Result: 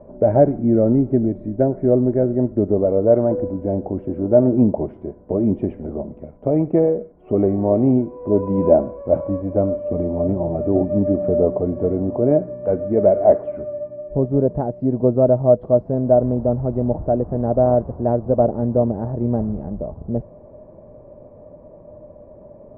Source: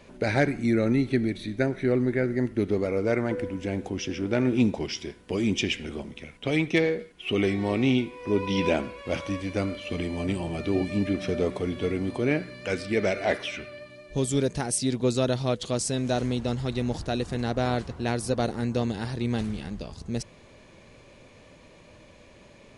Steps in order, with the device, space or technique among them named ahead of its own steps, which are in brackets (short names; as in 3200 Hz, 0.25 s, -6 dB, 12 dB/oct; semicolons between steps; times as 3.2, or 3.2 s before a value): under water (LPF 860 Hz 24 dB/oct; bell 610 Hz +11.5 dB 0.22 oct); gain +7 dB